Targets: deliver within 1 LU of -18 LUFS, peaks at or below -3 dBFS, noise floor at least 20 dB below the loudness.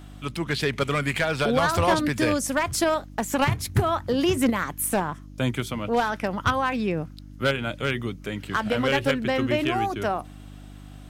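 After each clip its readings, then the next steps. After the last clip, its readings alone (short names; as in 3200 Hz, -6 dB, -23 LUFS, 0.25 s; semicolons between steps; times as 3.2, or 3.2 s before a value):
clipped 0.6%; flat tops at -14.0 dBFS; hum 50 Hz; harmonics up to 300 Hz; hum level -40 dBFS; loudness -25.0 LUFS; peak -14.0 dBFS; loudness target -18.0 LUFS
-> clip repair -14 dBFS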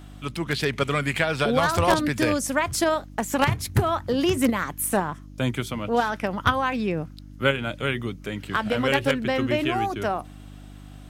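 clipped 0.0%; hum 50 Hz; harmonics up to 300 Hz; hum level -40 dBFS
-> de-hum 50 Hz, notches 6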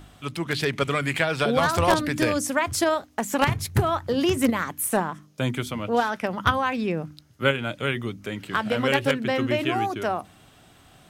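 hum none; loudness -24.5 LUFS; peak -4.5 dBFS; loudness target -18.0 LUFS
-> gain +6.5 dB; limiter -3 dBFS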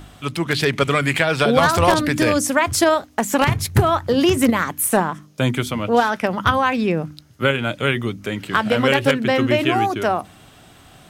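loudness -18.5 LUFS; peak -3.0 dBFS; noise floor -48 dBFS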